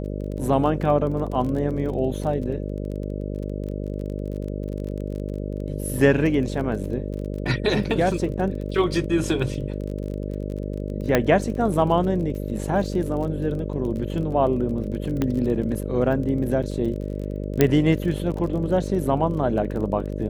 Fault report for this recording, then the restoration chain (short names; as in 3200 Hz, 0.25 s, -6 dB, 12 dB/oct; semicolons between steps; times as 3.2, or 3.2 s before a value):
buzz 50 Hz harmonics 12 -29 dBFS
crackle 27/s -31 dBFS
11.15 pop -4 dBFS
15.22 pop -11 dBFS
17.61 pop -3 dBFS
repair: de-click; de-hum 50 Hz, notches 12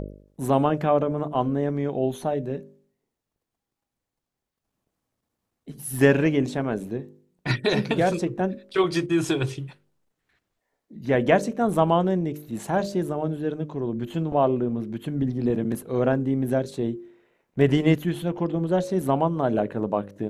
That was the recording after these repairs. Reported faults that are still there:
17.61 pop